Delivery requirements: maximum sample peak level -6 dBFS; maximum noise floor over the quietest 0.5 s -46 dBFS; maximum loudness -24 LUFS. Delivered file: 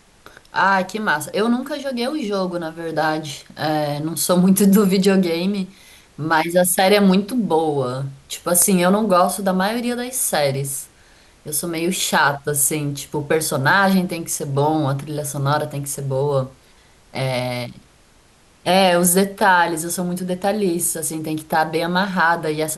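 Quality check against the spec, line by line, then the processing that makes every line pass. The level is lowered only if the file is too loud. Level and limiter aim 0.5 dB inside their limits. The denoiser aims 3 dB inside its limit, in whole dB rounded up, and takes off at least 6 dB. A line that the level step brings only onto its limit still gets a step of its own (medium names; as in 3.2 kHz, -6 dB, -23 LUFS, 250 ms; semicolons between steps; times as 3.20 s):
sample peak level -4.0 dBFS: fail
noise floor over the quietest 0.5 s -52 dBFS: pass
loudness -19.0 LUFS: fail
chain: trim -5.5 dB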